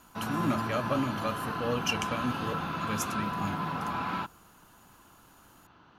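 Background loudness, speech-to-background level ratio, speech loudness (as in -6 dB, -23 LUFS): -34.0 LUFS, 0.0 dB, -34.0 LUFS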